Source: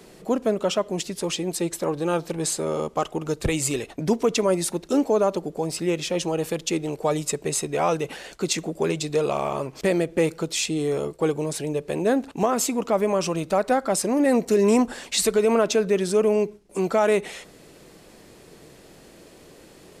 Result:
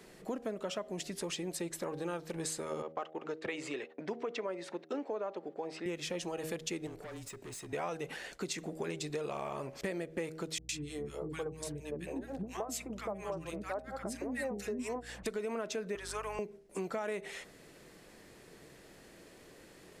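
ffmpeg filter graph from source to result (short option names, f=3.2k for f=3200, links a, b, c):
-filter_complex "[0:a]asettb=1/sr,asplit=3[a][b][c];[a]atrim=end=2.824[d];[b]atrim=start=2.82:end=5.86,asetpts=PTS-STARTPTS,afade=t=in:d=0.004:c=qsin,afade=t=out:st=3.036:d=0.004:c=qsin,agate=range=-15dB:threshold=-41dB:ratio=16:release=100:detection=peak,highpass=330,lowpass=3.1k[e];[c]atrim=start=5.856[f];[d][e]acrossfade=d=0.004:c1=hsin:c2=qsin[g];[g][f]acrossfade=d=0.004:c1=qsin:c2=hsin,asettb=1/sr,asplit=3[h][i][j];[h]atrim=end=6.874[k];[i]atrim=start=6.87:end=7.73,asetpts=PTS-STARTPTS,afade=t=in:d=0.004:c=qsin,afade=t=out:st=0.856:d=0.004:c=qsin,acompressor=threshold=-34dB:ratio=2.5:attack=3.2:release=140:knee=1:detection=peak,asoftclip=type=hard:threshold=-35dB,afreqshift=-28[l];[j]atrim=start=7.726[m];[k][l]acrossfade=d=0.004:c1=hsin:c2=qsin[n];[n][m]acrossfade=d=0.004:c1=qsin:c2=hsin,asettb=1/sr,asplit=3[o][p][q];[o]atrim=end=10.584[r];[p]atrim=start=10.58:end=15.26,asetpts=PTS-STARTPTS,afade=t=in:d=0.004:c=qsin,afade=t=out:st=4.676:d=0.004:c=qsin,tremolo=f=4.3:d=0.99,aeval=exprs='val(0)+0.00631*(sin(2*PI*60*n/s)+sin(2*PI*2*60*n/s)/2+sin(2*PI*3*60*n/s)/3+sin(2*PI*4*60*n/s)/4+sin(2*PI*5*60*n/s)/5)':c=same,acrossover=split=320|1300[s][t][u];[u]adelay=110[v];[t]adelay=170[w];[s][w][v]amix=inputs=3:normalize=0,atrim=end_sample=206388[x];[q]atrim=start=15.256[y];[r][x]acrossfade=d=0.004:c1=hsin:c2=qsin[z];[z][y]acrossfade=d=0.004:c1=qsin:c2=hsin,asettb=1/sr,asplit=3[aa][ab][ac];[aa]atrim=end=15.954[ad];[ab]atrim=start=15.95:end=16.39,asetpts=PTS-STARTPTS,afade=t=in:d=0.004:c=qsin,afade=t=out:st=0.436:d=0.004:c=qsin,highpass=f=1k:t=q:w=2.2,aeval=exprs='val(0)+0.0112*(sin(2*PI*50*n/s)+sin(2*PI*2*50*n/s)/2+sin(2*PI*3*50*n/s)/3+sin(2*PI*4*50*n/s)/4+sin(2*PI*5*50*n/s)/5)':c=same[ae];[ac]atrim=start=16.386[af];[ad][ae]acrossfade=d=0.004:c1=hsin:c2=qsin[ag];[ag][af]acrossfade=d=0.004:c1=qsin:c2=hsin,bandreject=f=79.29:t=h:w=4,bandreject=f=158.58:t=h:w=4,bandreject=f=237.87:t=h:w=4,bandreject=f=317.16:t=h:w=4,bandreject=f=396.45:t=h:w=4,bandreject=f=475.74:t=h:w=4,bandreject=f=555.03:t=h:w=4,bandreject=f=634.32:t=h:w=4,bandreject=f=713.61:t=h:w=4,bandreject=f=792.9:t=h:w=4,acompressor=threshold=-27dB:ratio=5,equalizer=f=1.8k:w=2.1:g=5.5,volume=-8dB"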